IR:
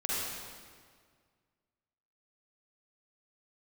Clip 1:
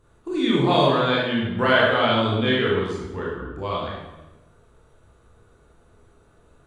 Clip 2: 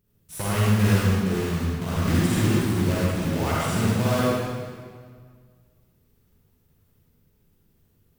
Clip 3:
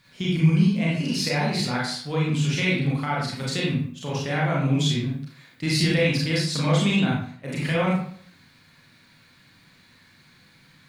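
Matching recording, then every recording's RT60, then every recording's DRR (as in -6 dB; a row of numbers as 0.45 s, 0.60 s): 2; 1.1 s, 1.9 s, 0.55 s; -5.5 dB, -7.5 dB, -5.5 dB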